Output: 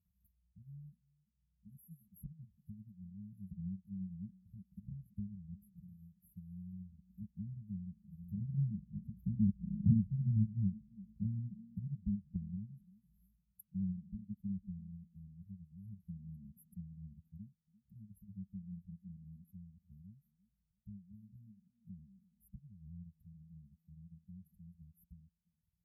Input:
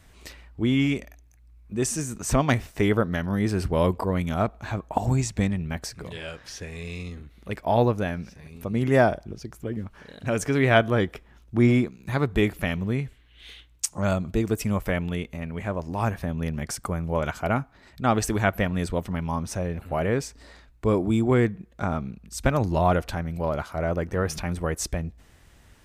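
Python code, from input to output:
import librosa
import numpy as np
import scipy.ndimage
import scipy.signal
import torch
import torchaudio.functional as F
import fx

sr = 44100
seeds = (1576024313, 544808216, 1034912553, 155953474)

y = fx.doppler_pass(x, sr, speed_mps=13, closest_m=2.0, pass_at_s=9.71)
y = fx.formant_shift(y, sr, semitones=4)
y = y + 0.71 * np.pad(y, (int(4.0 * sr / 1000.0), 0))[:len(y)]
y = fx.transient(y, sr, attack_db=5, sustain_db=-8)
y = fx.brickwall_bandstop(y, sr, low_hz=200.0, high_hz=11000.0)
y = fx.echo_stepped(y, sr, ms=343, hz=360.0, octaves=0.7, feedback_pct=70, wet_db=-7)
y = fx.env_lowpass_down(y, sr, base_hz=730.0, full_db=-50.5)
y = scipy.signal.sosfilt(scipy.signal.butter(2, 110.0, 'highpass', fs=sr, output='sos'), y)
y = fx.peak_eq(y, sr, hz=360.0, db=11.0, octaves=2.6)
y = fx.comb_cascade(y, sr, direction='rising', hz=0.4)
y = y * 10.0 ** (17.0 / 20.0)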